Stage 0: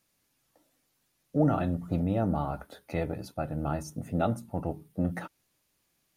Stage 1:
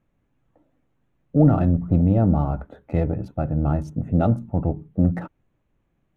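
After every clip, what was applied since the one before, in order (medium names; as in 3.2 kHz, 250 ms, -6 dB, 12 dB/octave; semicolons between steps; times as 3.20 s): local Wiener filter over 9 samples; tilt EQ -3 dB/octave; trim +3 dB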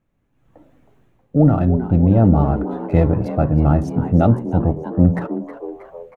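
level rider gain up to 15.5 dB; on a send: frequency-shifting echo 317 ms, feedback 53%, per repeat +110 Hz, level -13 dB; on the sum: trim -1 dB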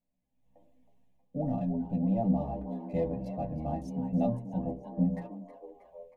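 static phaser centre 370 Hz, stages 6; inharmonic resonator 60 Hz, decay 0.27 s, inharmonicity 0.008; trim -5.5 dB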